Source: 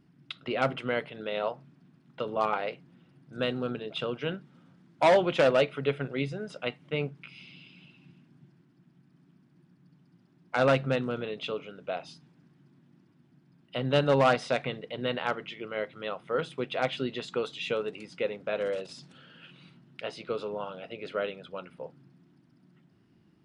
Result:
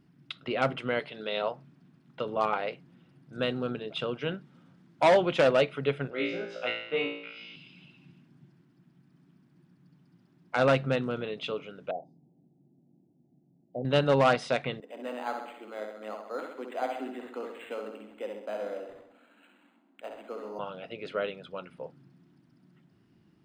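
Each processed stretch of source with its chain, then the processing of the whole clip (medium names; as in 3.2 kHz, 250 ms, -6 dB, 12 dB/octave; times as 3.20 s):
0.99–1.42 s: high-pass 180 Hz 6 dB/octave + peaking EQ 4.4 kHz +8.5 dB 0.74 oct + doubling 14 ms -13.5 dB
6.10–7.56 s: band-pass 310–7100 Hz + distance through air 120 m + flutter echo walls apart 3 m, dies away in 0.72 s
11.91–13.85 s: elliptic low-pass 770 Hz + bass shelf 130 Hz -9.5 dB
14.80–20.59 s: rippled Chebyshev high-pass 200 Hz, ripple 9 dB + filtered feedback delay 65 ms, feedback 58%, low-pass 4.5 kHz, level -4.5 dB + decimation joined by straight lines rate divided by 8×
whole clip: none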